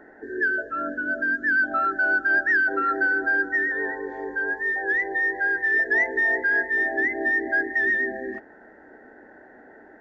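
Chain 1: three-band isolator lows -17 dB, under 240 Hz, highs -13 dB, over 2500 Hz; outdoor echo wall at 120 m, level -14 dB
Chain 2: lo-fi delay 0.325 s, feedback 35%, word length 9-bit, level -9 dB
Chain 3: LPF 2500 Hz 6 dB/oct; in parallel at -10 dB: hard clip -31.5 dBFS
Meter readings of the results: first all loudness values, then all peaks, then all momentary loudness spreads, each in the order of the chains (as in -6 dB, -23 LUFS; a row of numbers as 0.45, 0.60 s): -23.5, -22.0, -23.0 LUFS; -13.5, -11.0, -13.5 dBFS; 9, 9, 7 LU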